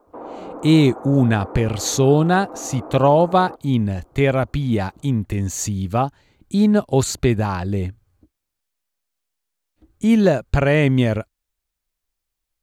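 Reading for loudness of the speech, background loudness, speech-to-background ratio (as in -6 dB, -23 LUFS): -19.0 LUFS, -35.5 LUFS, 16.5 dB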